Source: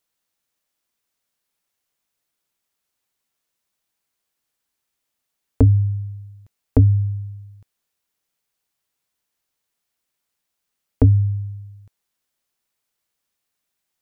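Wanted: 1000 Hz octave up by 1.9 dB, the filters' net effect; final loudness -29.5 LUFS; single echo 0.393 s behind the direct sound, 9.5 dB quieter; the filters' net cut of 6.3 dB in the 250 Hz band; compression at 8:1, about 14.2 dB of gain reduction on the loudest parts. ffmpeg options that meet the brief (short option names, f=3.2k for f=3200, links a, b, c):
-af "equalizer=f=250:t=o:g=-7,equalizer=f=1k:t=o:g=3,acompressor=threshold=-25dB:ratio=8,aecho=1:1:393:0.335,volume=3dB"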